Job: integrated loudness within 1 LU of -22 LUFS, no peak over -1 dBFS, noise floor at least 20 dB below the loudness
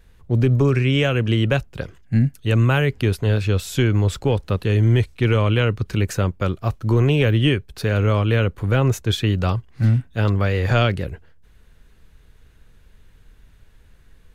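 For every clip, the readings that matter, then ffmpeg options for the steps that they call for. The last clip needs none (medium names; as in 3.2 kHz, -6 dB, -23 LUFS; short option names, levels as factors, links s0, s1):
loudness -20.0 LUFS; peak level -6.5 dBFS; loudness target -22.0 LUFS
-> -af "volume=0.794"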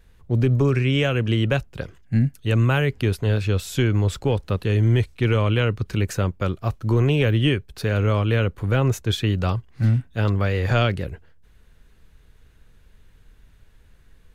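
loudness -22.0 LUFS; peak level -8.5 dBFS; noise floor -53 dBFS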